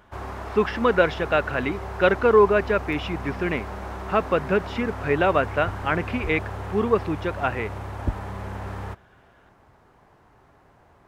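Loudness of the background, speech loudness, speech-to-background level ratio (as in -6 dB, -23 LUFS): -34.0 LUFS, -23.5 LUFS, 10.5 dB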